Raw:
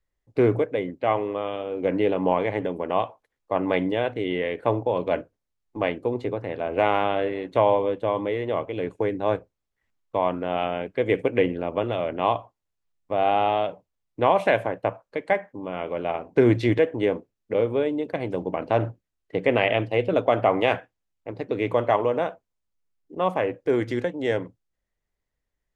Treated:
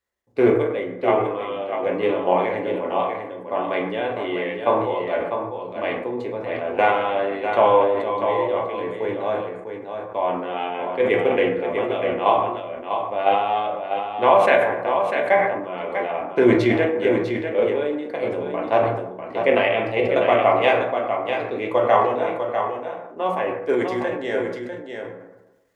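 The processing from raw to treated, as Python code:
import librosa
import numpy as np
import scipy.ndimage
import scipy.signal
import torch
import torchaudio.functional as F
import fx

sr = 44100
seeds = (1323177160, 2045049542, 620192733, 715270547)

p1 = fx.level_steps(x, sr, step_db=20)
p2 = x + F.gain(torch.from_numpy(p1), 1.0).numpy()
p3 = fx.highpass(p2, sr, hz=400.0, slope=6)
p4 = p3 + fx.echo_single(p3, sr, ms=647, db=-7.0, dry=0)
p5 = fx.rev_fdn(p4, sr, rt60_s=0.89, lf_ratio=1.0, hf_ratio=0.5, size_ms=81.0, drr_db=0.0)
p6 = fx.sustainer(p5, sr, db_per_s=55.0)
y = F.gain(torch.from_numpy(p6), -3.0).numpy()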